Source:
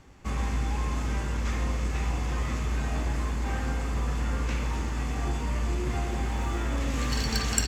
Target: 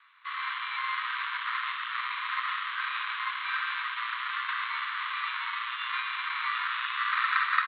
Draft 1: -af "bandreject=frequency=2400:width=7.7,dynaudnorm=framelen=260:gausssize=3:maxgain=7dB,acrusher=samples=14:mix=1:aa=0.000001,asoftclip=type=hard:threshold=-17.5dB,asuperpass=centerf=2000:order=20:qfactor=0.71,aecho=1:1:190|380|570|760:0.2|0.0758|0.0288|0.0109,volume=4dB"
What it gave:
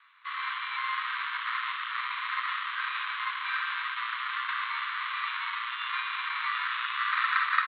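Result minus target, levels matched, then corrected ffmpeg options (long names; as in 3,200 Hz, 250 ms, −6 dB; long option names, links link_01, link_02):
echo 53 ms late
-af "bandreject=frequency=2400:width=7.7,dynaudnorm=framelen=260:gausssize=3:maxgain=7dB,acrusher=samples=14:mix=1:aa=0.000001,asoftclip=type=hard:threshold=-17.5dB,asuperpass=centerf=2000:order=20:qfactor=0.71,aecho=1:1:137|274|411|548:0.2|0.0758|0.0288|0.0109,volume=4dB"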